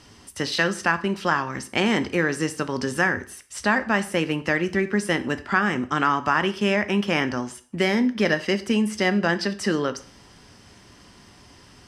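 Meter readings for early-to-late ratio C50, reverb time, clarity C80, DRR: 16.0 dB, 0.45 s, 20.5 dB, 10.5 dB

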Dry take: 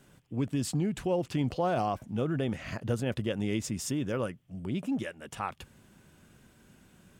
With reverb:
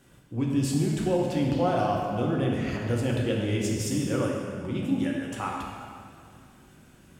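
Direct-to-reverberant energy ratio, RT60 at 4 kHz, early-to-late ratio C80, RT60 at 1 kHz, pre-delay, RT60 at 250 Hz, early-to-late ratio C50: −2.5 dB, 1.7 s, 2.0 dB, 2.2 s, 3 ms, 2.3 s, 0.5 dB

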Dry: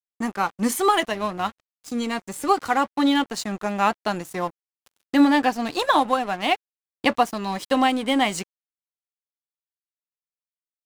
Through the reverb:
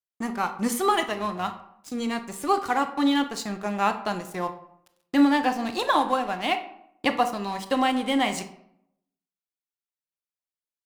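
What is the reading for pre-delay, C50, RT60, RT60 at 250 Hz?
23 ms, 11.0 dB, 0.75 s, 0.85 s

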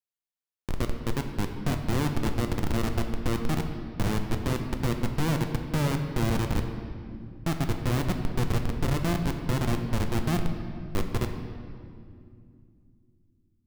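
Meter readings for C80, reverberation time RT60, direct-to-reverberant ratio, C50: 7.5 dB, 2.3 s, 4.5 dB, 6.5 dB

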